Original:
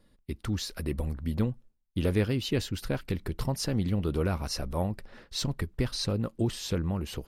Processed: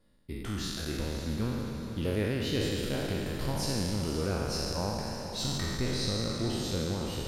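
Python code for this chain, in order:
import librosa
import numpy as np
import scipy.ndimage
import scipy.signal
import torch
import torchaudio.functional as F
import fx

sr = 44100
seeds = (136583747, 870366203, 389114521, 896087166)

y = fx.spec_trails(x, sr, decay_s=2.28)
y = fx.echo_diffused(y, sr, ms=507, feedback_pct=45, wet_db=-9.0)
y = fx.echo_warbled(y, sr, ms=138, feedback_pct=56, rate_hz=2.8, cents=179, wet_db=-16)
y = F.gain(torch.from_numpy(y), -6.5).numpy()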